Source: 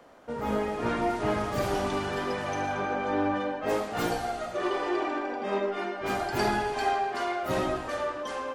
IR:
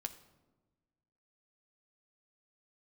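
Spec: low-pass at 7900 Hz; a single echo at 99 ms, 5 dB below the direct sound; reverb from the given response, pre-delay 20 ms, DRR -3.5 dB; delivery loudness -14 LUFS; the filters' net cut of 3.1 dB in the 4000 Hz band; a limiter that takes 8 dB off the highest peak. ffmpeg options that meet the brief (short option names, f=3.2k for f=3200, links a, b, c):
-filter_complex "[0:a]lowpass=7.9k,equalizer=f=4k:t=o:g=-4,alimiter=limit=-21.5dB:level=0:latency=1,aecho=1:1:99:0.562,asplit=2[a][b];[1:a]atrim=start_sample=2205,adelay=20[c];[b][c]afir=irnorm=-1:irlink=0,volume=5dB[d];[a][d]amix=inputs=2:normalize=0,volume=10.5dB"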